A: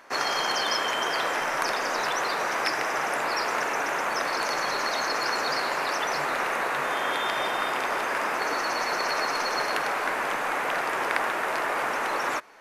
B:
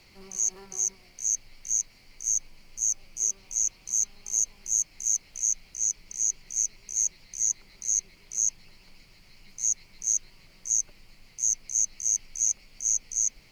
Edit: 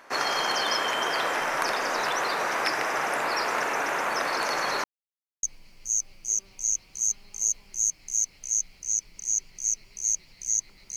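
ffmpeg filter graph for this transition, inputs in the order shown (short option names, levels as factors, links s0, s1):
-filter_complex "[0:a]apad=whole_dur=10.96,atrim=end=10.96,asplit=2[s0][s1];[s0]atrim=end=4.84,asetpts=PTS-STARTPTS,afade=t=out:st=4.836:d=0.004:c=hsin[s2];[s1]atrim=start=4.84:end=5.43,asetpts=PTS-STARTPTS,volume=0[s3];[1:a]atrim=start=2.35:end=7.88,asetpts=PTS-STARTPTS,afade=t=in:d=0.004:c=hsin[s4];[s2][s3][s4]concat=n=3:v=0:a=1"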